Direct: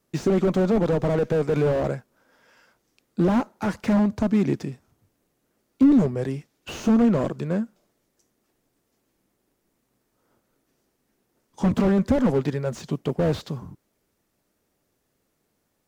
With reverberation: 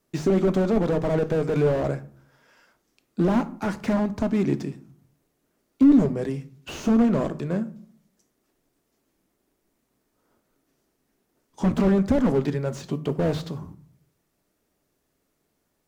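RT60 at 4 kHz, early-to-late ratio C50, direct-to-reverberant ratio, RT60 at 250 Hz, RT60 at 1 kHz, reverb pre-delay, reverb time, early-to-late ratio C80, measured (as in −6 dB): 0.30 s, 17.5 dB, 11.5 dB, 0.70 s, 0.45 s, 3 ms, 0.50 s, 21.5 dB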